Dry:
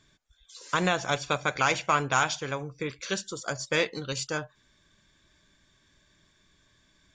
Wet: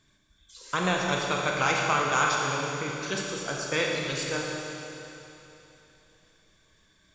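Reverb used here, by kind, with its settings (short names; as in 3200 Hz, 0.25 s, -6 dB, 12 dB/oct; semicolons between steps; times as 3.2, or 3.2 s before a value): Schroeder reverb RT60 3.2 s, combs from 29 ms, DRR -1.5 dB; gain -2.5 dB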